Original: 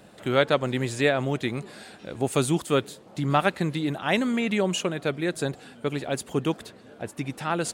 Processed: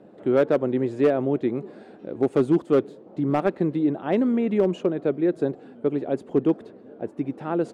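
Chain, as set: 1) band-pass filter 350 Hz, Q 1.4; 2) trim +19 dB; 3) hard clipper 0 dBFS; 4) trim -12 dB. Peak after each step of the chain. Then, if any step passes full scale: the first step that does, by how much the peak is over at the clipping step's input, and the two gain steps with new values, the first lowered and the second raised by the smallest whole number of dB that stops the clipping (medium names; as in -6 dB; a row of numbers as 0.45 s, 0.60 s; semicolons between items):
-14.5 dBFS, +4.5 dBFS, 0.0 dBFS, -12.0 dBFS; step 2, 4.5 dB; step 2 +14 dB, step 4 -7 dB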